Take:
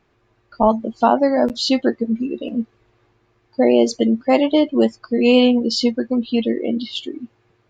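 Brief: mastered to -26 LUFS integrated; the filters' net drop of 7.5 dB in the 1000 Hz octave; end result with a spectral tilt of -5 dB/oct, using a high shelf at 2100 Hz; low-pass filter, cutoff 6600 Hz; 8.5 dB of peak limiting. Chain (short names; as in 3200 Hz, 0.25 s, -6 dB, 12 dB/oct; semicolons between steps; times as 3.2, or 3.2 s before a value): LPF 6600 Hz; bell 1000 Hz -9 dB; high shelf 2100 Hz -9 dB; gain -2 dB; limiter -16 dBFS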